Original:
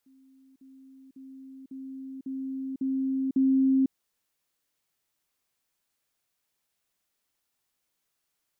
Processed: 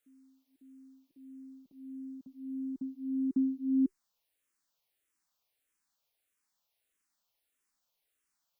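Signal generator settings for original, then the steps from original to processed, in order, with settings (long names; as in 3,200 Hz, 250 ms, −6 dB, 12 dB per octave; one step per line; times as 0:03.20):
level staircase 266 Hz −55 dBFS, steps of 6 dB, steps 7, 0.50 s 0.05 s
parametric band 120 Hz −7 dB 1.6 octaves
notch filter 380 Hz, Q 12
frequency shifter mixed with the dry sound −1.6 Hz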